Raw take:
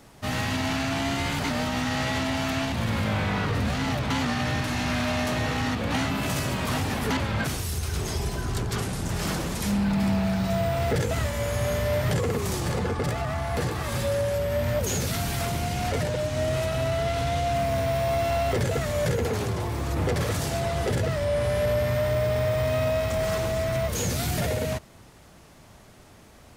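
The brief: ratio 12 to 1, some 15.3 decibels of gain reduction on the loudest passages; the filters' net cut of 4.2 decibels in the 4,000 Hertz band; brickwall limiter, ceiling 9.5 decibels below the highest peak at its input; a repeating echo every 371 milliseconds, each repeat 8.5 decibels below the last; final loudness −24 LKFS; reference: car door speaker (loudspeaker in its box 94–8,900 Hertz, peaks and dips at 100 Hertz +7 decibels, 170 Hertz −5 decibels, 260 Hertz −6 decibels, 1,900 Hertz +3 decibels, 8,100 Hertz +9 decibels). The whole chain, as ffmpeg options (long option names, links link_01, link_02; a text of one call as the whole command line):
ffmpeg -i in.wav -af "equalizer=frequency=4000:width_type=o:gain=-6,acompressor=threshold=-37dB:ratio=12,alimiter=level_in=12.5dB:limit=-24dB:level=0:latency=1,volume=-12.5dB,highpass=94,equalizer=frequency=100:width_type=q:width=4:gain=7,equalizer=frequency=170:width_type=q:width=4:gain=-5,equalizer=frequency=260:width_type=q:width=4:gain=-6,equalizer=frequency=1900:width_type=q:width=4:gain=3,equalizer=frequency=8100:width_type=q:width=4:gain=9,lowpass=frequency=8900:width=0.5412,lowpass=frequency=8900:width=1.3066,aecho=1:1:371|742|1113|1484:0.376|0.143|0.0543|0.0206,volume=20dB" out.wav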